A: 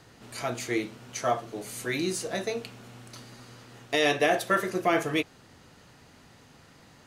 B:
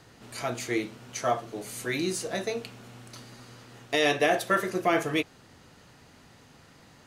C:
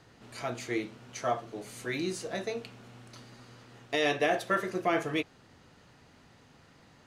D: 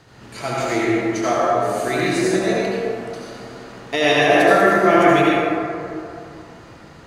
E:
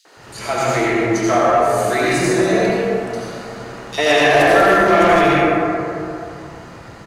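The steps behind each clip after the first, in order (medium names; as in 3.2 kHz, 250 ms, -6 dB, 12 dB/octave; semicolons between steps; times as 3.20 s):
no audible change
treble shelf 8.8 kHz -11 dB; trim -3.5 dB
reverberation RT60 2.7 s, pre-delay 63 ms, DRR -7 dB; trim +7.5 dB
saturation -12 dBFS, distortion -13 dB; three bands offset in time highs, mids, lows 50/170 ms, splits 290/3500 Hz; trim +6 dB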